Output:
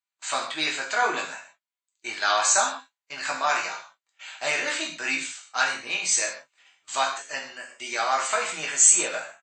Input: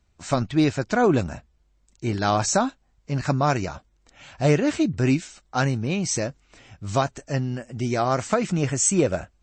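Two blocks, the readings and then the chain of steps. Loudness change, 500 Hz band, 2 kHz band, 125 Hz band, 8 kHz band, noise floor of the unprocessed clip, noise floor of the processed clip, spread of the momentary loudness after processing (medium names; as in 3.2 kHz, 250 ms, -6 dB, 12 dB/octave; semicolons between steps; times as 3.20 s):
0.0 dB, -8.5 dB, +6.0 dB, -32.0 dB, +6.5 dB, -64 dBFS, under -85 dBFS, 17 LU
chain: high-pass 1.4 kHz 12 dB/octave; band-stop 5.5 kHz, Q 5.5; gate -51 dBFS, range -21 dB; doubling 19 ms -7.5 dB; gated-style reverb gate 180 ms falling, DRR -0.5 dB; trim +3.5 dB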